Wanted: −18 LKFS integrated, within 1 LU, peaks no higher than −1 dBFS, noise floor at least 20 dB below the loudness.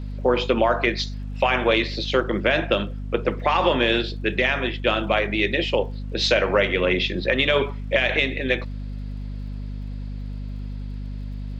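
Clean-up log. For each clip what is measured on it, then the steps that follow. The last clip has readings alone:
crackle rate 50 per second; mains hum 50 Hz; hum harmonics up to 250 Hz; level of the hum −28 dBFS; integrated loudness −22.0 LKFS; sample peak −5.5 dBFS; target loudness −18.0 LKFS
→ click removal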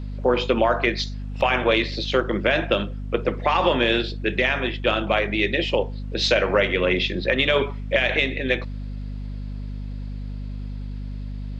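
crackle rate 0.086 per second; mains hum 50 Hz; hum harmonics up to 250 Hz; level of the hum −28 dBFS
→ mains-hum notches 50/100/150/200/250 Hz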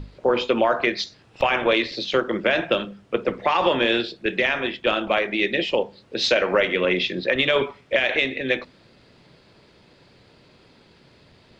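mains hum none found; integrated loudness −22.0 LKFS; sample peak −6.0 dBFS; target loudness −18.0 LKFS
→ level +4 dB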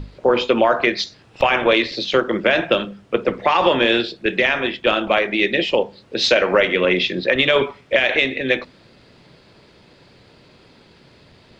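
integrated loudness −18.0 LKFS; sample peak −2.0 dBFS; background noise floor −51 dBFS

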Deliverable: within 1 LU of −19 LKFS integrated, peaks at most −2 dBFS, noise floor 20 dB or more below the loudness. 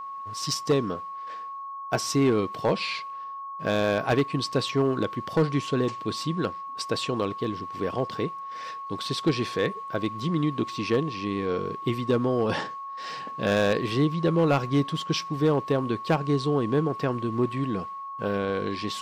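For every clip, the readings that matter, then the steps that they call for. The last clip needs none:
share of clipped samples 0.6%; peaks flattened at −15.5 dBFS; interfering tone 1,100 Hz; level of the tone −34 dBFS; integrated loudness −27.0 LKFS; sample peak −15.5 dBFS; target loudness −19.0 LKFS
→ clipped peaks rebuilt −15.5 dBFS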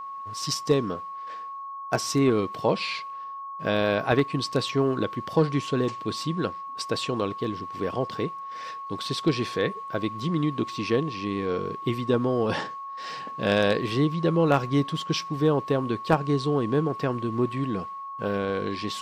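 share of clipped samples 0.0%; interfering tone 1,100 Hz; level of the tone −34 dBFS
→ notch filter 1,100 Hz, Q 30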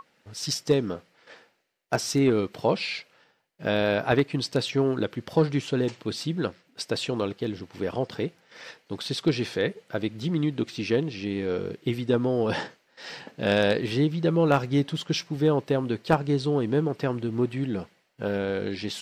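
interfering tone none found; integrated loudness −27.0 LKFS; sample peak −6.5 dBFS; target loudness −19.0 LKFS
→ level +8 dB
brickwall limiter −2 dBFS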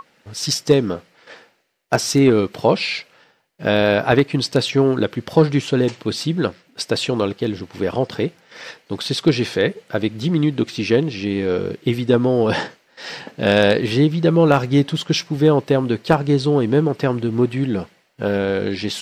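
integrated loudness −19.0 LKFS; sample peak −2.0 dBFS; background noise floor −59 dBFS

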